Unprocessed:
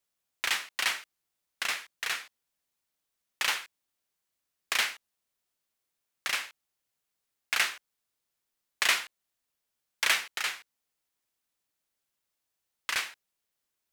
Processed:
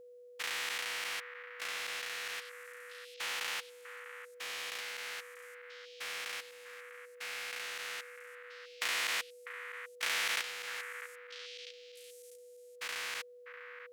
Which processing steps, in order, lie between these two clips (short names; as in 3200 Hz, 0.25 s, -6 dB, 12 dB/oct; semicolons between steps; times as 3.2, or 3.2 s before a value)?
stepped spectrum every 0.4 s; delay with a stepping band-pass 0.648 s, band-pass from 1500 Hz, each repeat 1.4 oct, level -7 dB; whine 490 Hz -52 dBFS